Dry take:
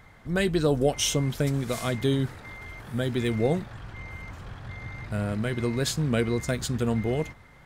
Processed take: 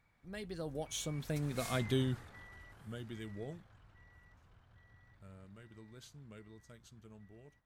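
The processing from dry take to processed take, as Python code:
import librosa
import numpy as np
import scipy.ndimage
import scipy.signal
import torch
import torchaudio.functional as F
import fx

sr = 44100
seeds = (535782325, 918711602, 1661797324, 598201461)

y = fx.doppler_pass(x, sr, speed_mps=27, closest_m=9.2, pass_at_s=1.79)
y = fx.peak_eq(y, sr, hz=390.0, db=-2.0, octaves=1.9)
y = F.gain(torch.from_numpy(y), -6.0).numpy()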